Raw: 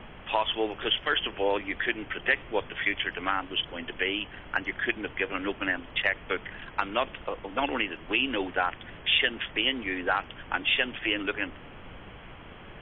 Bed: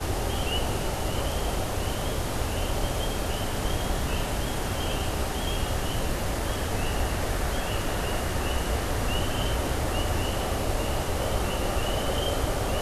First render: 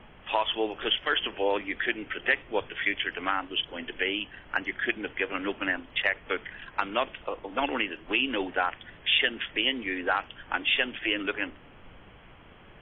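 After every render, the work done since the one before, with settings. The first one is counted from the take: noise print and reduce 6 dB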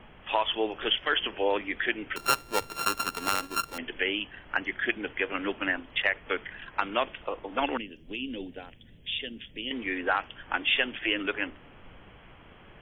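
2.16–3.78 sample sorter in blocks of 32 samples; 7.77–9.71 EQ curve 240 Hz 0 dB, 340 Hz -9 dB, 490 Hz -8 dB, 740 Hz -18 dB, 1200 Hz -26 dB, 4000 Hz -4 dB, 6100 Hz +7 dB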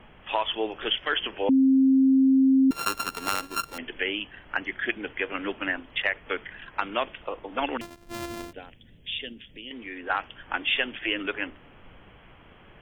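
1.49–2.71 bleep 266 Hz -15.5 dBFS; 7.81–8.53 sample sorter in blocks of 128 samples; 9.33–10.1 compressor 1.5:1, threshold -46 dBFS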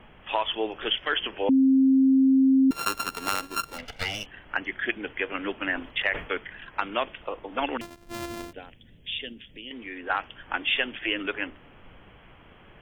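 3.76–4.26 minimum comb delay 1.4 ms; 5.58–6.38 sustainer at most 120 dB/s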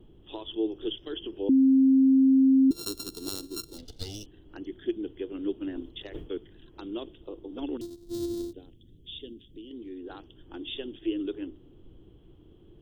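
EQ curve 110 Hz 0 dB, 230 Hz -5 dB, 340 Hz +7 dB, 580 Hz -14 dB, 2300 Hz -29 dB, 3800 Hz -1 dB, 5400 Hz -3 dB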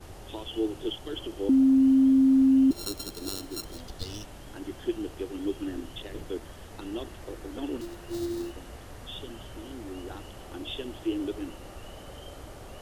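add bed -17.5 dB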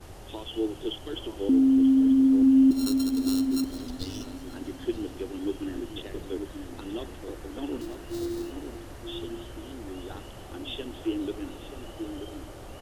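outdoor echo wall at 160 m, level -7 dB; warbling echo 0.268 s, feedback 79%, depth 89 cents, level -20.5 dB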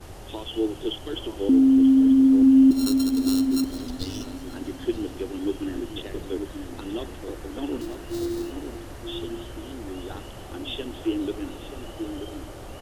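gain +3.5 dB

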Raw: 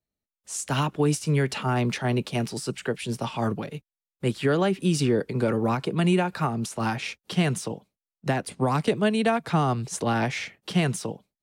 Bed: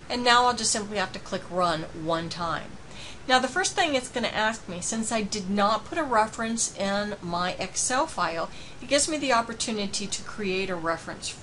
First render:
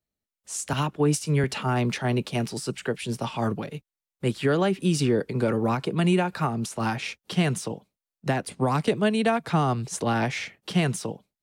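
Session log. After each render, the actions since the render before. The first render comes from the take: 0.73–1.44 three-band expander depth 70%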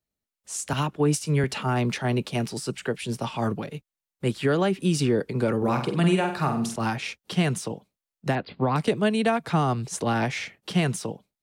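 5.57–6.76 flutter echo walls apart 8.2 m, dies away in 0.47 s; 8.35–8.76 steep low-pass 4700 Hz 96 dB/oct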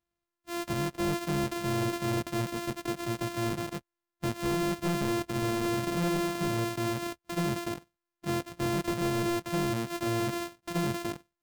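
sample sorter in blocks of 128 samples; soft clip -26 dBFS, distortion -8 dB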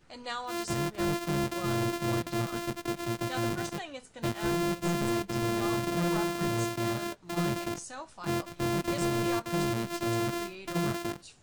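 add bed -17.5 dB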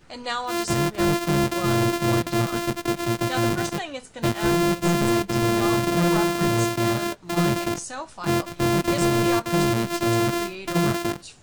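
gain +8.5 dB

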